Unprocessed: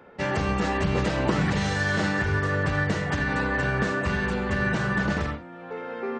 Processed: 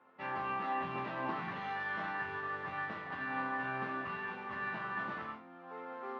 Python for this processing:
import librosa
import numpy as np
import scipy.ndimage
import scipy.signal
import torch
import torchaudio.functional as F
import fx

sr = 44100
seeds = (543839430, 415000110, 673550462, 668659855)

y = fx.mod_noise(x, sr, seeds[0], snr_db=14)
y = fx.cabinet(y, sr, low_hz=210.0, low_slope=12, high_hz=3300.0, hz=(460.0, 750.0, 1100.0), db=(-7, 3, 10))
y = fx.resonator_bank(y, sr, root=41, chord='major', decay_s=0.28)
y = F.gain(torch.from_numpy(y), -3.5).numpy()